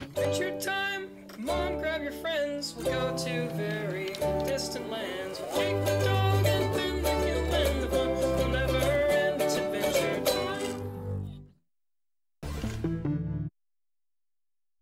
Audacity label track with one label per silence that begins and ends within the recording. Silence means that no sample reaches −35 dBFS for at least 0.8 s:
11.350000	12.430000	silence